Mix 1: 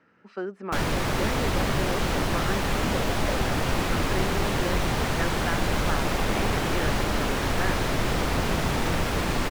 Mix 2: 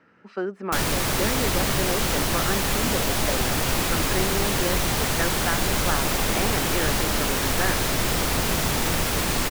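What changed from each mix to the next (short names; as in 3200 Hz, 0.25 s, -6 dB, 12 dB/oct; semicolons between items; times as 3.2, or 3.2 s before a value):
speech +4.0 dB; background: remove LPF 2300 Hz 6 dB/oct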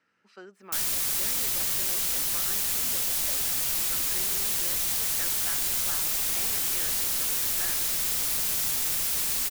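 master: add pre-emphasis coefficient 0.9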